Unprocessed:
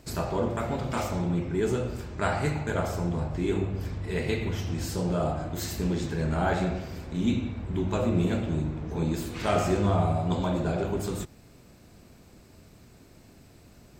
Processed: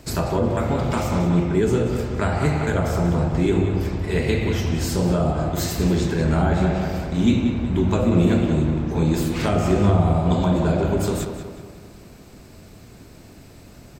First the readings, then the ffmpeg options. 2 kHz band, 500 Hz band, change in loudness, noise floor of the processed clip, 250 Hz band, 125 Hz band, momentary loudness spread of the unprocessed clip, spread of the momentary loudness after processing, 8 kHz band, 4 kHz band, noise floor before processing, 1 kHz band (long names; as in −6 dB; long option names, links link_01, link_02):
+5.5 dB, +7.0 dB, +8.0 dB, −45 dBFS, +9.0 dB, +8.5 dB, 7 LU, 6 LU, +7.0 dB, +6.5 dB, −54 dBFS, +5.0 dB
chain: -filter_complex "[0:a]asplit=2[link_01][link_02];[link_02]adelay=184,lowpass=frequency=4100:poles=1,volume=-8dB,asplit=2[link_03][link_04];[link_04]adelay=184,lowpass=frequency=4100:poles=1,volume=0.52,asplit=2[link_05][link_06];[link_06]adelay=184,lowpass=frequency=4100:poles=1,volume=0.52,asplit=2[link_07][link_08];[link_08]adelay=184,lowpass=frequency=4100:poles=1,volume=0.52,asplit=2[link_09][link_10];[link_10]adelay=184,lowpass=frequency=4100:poles=1,volume=0.52,asplit=2[link_11][link_12];[link_12]adelay=184,lowpass=frequency=4100:poles=1,volume=0.52[link_13];[link_01][link_03][link_05][link_07][link_09][link_11][link_13]amix=inputs=7:normalize=0,acrossover=split=390[link_14][link_15];[link_15]acompressor=threshold=-31dB:ratio=10[link_16];[link_14][link_16]amix=inputs=2:normalize=0,volume=8dB"